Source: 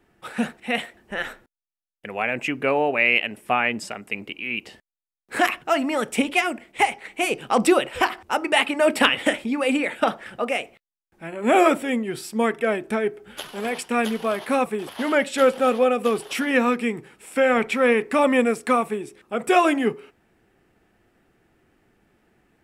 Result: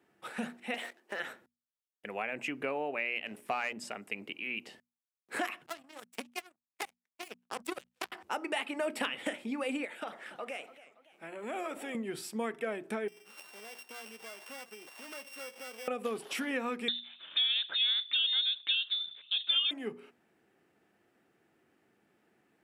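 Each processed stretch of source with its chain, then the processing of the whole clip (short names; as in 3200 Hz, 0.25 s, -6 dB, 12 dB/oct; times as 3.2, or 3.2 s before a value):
0.74–1.2 HPF 290 Hz 24 dB/oct + sample leveller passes 2 + compressor 10:1, threshold -25 dBFS
3.26–3.73 notches 60/120/180/240/300/360/420/480/540/600 Hz + sample leveller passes 1
5.66–8.12 high shelf 11000 Hz +10 dB + power-law curve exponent 3 + three-band squash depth 70%
9.85–11.95 low shelf 210 Hz -11 dB + compressor 2.5:1, threshold -32 dBFS + warbling echo 0.28 s, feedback 44%, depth 167 cents, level -16.5 dB
13.08–15.88 sample sorter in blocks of 16 samples + HPF 730 Hz 6 dB/oct + compressor 2.5:1, threshold -42 dBFS
16.88–19.71 band shelf 500 Hz +11.5 dB 2.9 oct + inverted band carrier 3900 Hz
whole clip: notches 60/120/180/240 Hz; compressor 3:1, threshold -26 dBFS; HPF 160 Hz 12 dB/oct; gain -7 dB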